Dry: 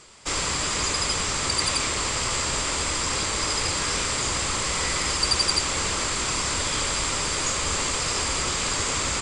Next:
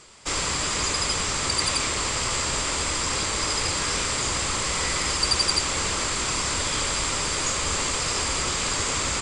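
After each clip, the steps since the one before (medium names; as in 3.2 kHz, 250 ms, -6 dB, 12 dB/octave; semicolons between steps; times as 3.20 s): no audible change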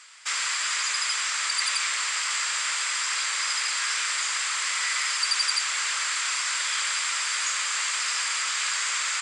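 in parallel at 0 dB: peak limiter -20.5 dBFS, peak gain reduction 11.5 dB; on the sum: resonant high-pass 1.6 kHz, resonance Q 1.8; trim -6 dB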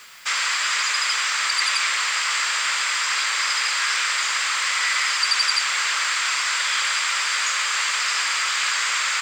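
distance through air 67 m; word length cut 10-bit, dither triangular; trim +7 dB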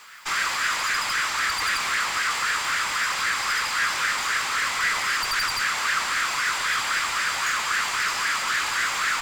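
valve stage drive 22 dB, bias 0.6; sweeping bell 3.8 Hz 820–1700 Hz +11 dB; trim -1.5 dB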